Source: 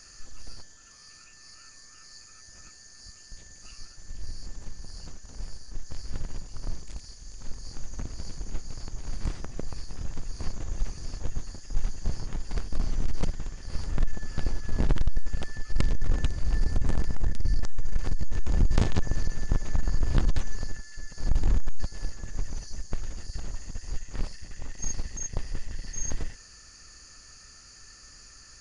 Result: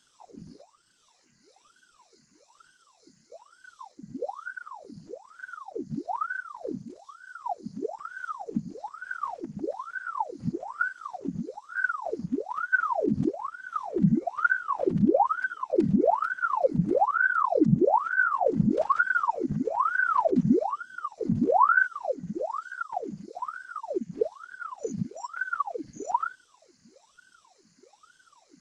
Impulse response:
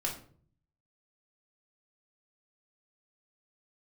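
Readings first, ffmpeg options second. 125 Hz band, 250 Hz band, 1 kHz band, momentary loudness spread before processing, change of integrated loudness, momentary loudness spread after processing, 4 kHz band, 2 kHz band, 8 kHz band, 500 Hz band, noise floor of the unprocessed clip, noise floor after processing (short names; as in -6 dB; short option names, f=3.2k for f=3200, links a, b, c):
-2.0 dB, +11.5 dB, +21.0 dB, 18 LU, +7.0 dB, 16 LU, under -10 dB, +18.5 dB, n/a, +15.5 dB, -51 dBFS, -65 dBFS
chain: -af "afftfilt=real='hypot(re,im)*cos(2*PI*random(0))':imag='hypot(re,im)*sin(2*PI*random(1))':win_size=512:overlap=0.75,asubboost=boost=5.5:cutoff=51,aeval=exprs='val(0)*sin(2*PI*850*n/s+850*0.8/1.1*sin(2*PI*1.1*n/s))':c=same,volume=-6dB"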